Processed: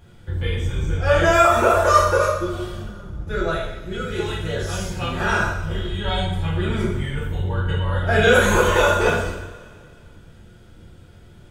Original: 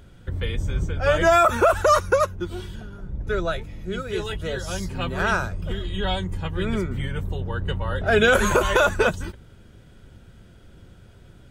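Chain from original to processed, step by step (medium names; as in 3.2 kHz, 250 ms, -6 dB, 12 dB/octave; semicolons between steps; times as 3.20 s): two-slope reverb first 0.73 s, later 2.2 s, from -17 dB, DRR -7 dB; trim -5 dB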